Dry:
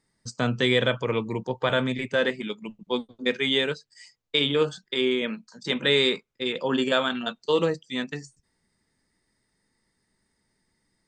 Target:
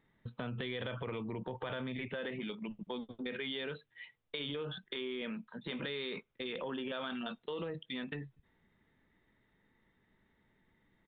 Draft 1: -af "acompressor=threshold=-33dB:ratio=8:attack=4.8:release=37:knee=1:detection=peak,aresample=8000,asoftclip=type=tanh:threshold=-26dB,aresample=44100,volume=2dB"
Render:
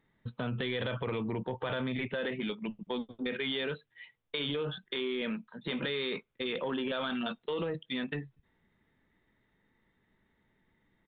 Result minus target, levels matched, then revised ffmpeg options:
compressor: peak gain reduction -6.5 dB
-af "acompressor=threshold=-40.5dB:ratio=8:attack=4.8:release=37:knee=1:detection=peak,aresample=8000,asoftclip=type=tanh:threshold=-26dB,aresample=44100,volume=2dB"

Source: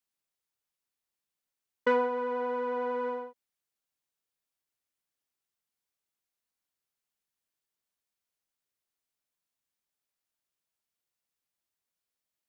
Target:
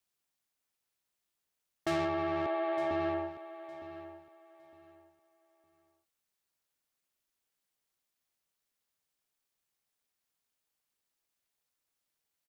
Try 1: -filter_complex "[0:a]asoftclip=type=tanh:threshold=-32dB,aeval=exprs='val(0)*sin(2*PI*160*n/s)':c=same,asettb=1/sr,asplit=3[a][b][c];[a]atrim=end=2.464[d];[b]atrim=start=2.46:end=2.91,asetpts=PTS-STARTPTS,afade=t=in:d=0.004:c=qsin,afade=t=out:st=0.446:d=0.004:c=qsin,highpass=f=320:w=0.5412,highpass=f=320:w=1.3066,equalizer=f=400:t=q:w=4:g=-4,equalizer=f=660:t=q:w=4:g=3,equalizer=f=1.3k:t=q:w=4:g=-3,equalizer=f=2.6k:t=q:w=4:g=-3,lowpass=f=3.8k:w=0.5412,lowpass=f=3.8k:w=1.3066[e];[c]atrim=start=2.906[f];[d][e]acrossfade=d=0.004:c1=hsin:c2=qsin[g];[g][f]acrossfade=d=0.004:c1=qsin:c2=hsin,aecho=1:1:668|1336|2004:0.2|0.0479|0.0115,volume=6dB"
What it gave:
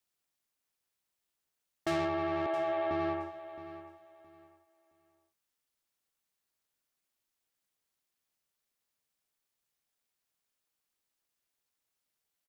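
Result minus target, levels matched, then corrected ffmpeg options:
echo 0.242 s early
-filter_complex "[0:a]asoftclip=type=tanh:threshold=-32dB,aeval=exprs='val(0)*sin(2*PI*160*n/s)':c=same,asettb=1/sr,asplit=3[a][b][c];[a]atrim=end=2.464[d];[b]atrim=start=2.46:end=2.91,asetpts=PTS-STARTPTS,afade=t=in:d=0.004:c=qsin,afade=t=out:st=0.446:d=0.004:c=qsin,highpass=f=320:w=0.5412,highpass=f=320:w=1.3066,equalizer=f=400:t=q:w=4:g=-4,equalizer=f=660:t=q:w=4:g=3,equalizer=f=1.3k:t=q:w=4:g=-3,equalizer=f=2.6k:t=q:w=4:g=-3,lowpass=f=3.8k:w=0.5412,lowpass=f=3.8k:w=1.3066[e];[c]atrim=start=2.906[f];[d][e]acrossfade=d=0.004:c1=hsin:c2=qsin[g];[g][f]acrossfade=d=0.004:c1=qsin:c2=hsin,aecho=1:1:910|1820|2730:0.2|0.0479|0.0115,volume=6dB"

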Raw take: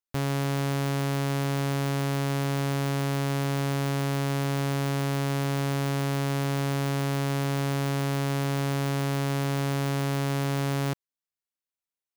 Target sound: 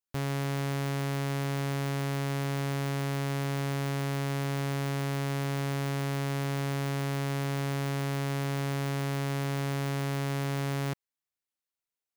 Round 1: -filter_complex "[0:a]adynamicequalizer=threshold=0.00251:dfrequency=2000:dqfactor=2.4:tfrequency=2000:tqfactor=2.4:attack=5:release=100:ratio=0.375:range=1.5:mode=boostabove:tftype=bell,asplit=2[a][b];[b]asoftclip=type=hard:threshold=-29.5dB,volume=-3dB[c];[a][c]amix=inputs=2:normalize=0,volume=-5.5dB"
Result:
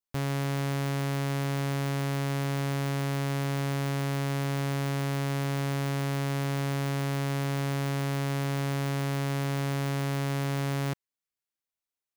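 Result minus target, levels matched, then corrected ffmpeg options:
hard clip: distortion -4 dB
-filter_complex "[0:a]adynamicequalizer=threshold=0.00251:dfrequency=2000:dqfactor=2.4:tfrequency=2000:tqfactor=2.4:attack=5:release=100:ratio=0.375:range=1.5:mode=boostabove:tftype=bell,asplit=2[a][b];[b]asoftclip=type=hard:threshold=-37dB,volume=-3dB[c];[a][c]amix=inputs=2:normalize=0,volume=-5.5dB"

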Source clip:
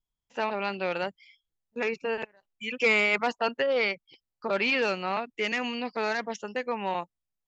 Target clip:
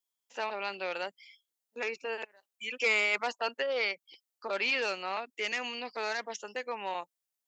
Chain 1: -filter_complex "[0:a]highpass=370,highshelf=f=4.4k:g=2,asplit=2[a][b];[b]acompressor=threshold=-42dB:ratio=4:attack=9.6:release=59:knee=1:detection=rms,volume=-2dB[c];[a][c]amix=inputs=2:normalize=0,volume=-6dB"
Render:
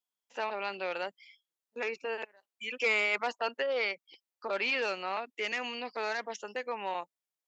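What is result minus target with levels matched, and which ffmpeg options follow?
compressor: peak gain reduction -9 dB; 8000 Hz band -4.0 dB
-filter_complex "[0:a]highpass=370,highshelf=f=4.4k:g=10,asplit=2[a][b];[b]acompressor=threshold=-52.5dB:ratio=4:attack=9.6:release=59:knee=1:detection=rms,volume=-2dB[c];[a][c]amix=inputs=2:normalize=0,volume=-6dB"

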